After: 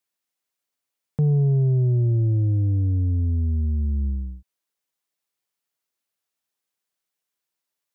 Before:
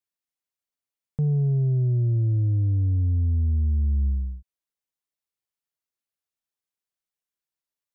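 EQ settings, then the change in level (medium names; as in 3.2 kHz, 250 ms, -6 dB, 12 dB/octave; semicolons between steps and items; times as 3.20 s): high-pass 170 Hz 6 dB/octave; +7.0 dB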